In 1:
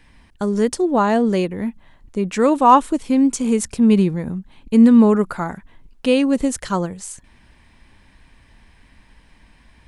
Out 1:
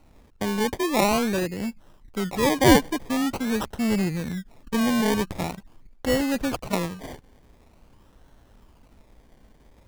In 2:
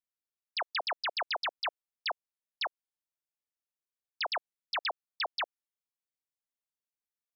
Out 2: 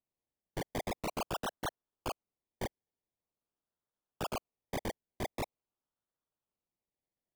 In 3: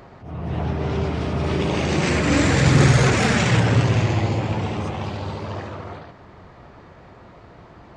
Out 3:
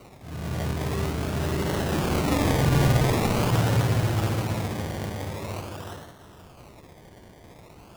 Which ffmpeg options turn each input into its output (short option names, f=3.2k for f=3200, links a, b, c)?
-filter_complex "[0:a]acrossover=split=130|510|4600[a][b][c][d];[b]asoftclip=type=tanh:threshold=-21dB[e];[a][e][c][d]amix=inputs=4:normalize=0,acrusher=samples=26:mix=1:aa=0.000001:lfo=1:lforange=15.6:lforate=0.45,volume=-3.5dB"